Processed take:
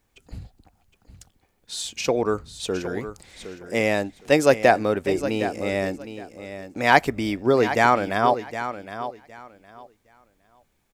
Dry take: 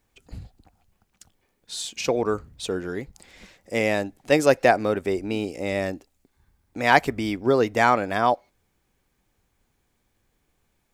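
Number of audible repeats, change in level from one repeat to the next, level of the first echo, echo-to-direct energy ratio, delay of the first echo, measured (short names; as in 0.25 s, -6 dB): 2, -14.0 dB, -11.5 dB, -11.5 dB, 0.763 s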